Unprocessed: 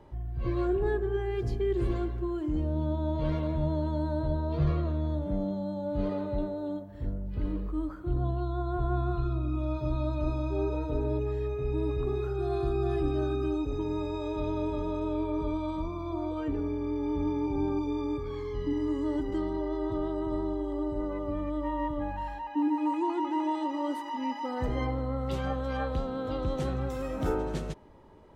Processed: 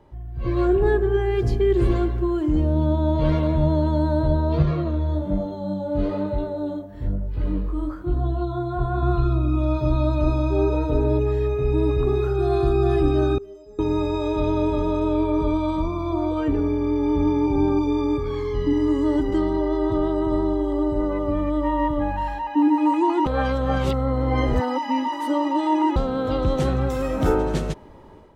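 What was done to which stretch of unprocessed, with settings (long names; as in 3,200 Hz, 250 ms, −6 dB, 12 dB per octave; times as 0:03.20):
0:04.62–0:09.03: chorus effect 1.1 Hz, delay 18 ms, depth 5.8 ms
0:13.38–0:13.79: stiff-string resonator 200 Hz, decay 0.68 s, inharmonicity 0.008
0:23.26–0:25.96: reverse
whole clip: automatic gain control gain up to 9.5 dB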